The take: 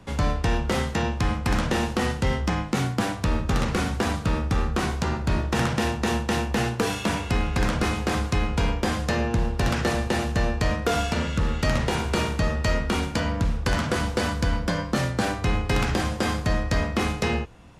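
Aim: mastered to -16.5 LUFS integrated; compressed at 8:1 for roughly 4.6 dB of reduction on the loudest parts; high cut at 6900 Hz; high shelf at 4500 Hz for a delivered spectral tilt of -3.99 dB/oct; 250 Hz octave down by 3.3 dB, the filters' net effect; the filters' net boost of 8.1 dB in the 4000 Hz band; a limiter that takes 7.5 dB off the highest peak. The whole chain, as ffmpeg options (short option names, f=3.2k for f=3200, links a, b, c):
-af "lowpass=6.9k,equalizer=f=250:t=o:g=-4.5,equalizer=f=4k:t=o:g=7,highshelf=f=4.5k:g=7.5,acompressor=threshold=-23dB:ratio=8,volume=12dB,alimiter=limit=-5.5dB:level=0:latency=1"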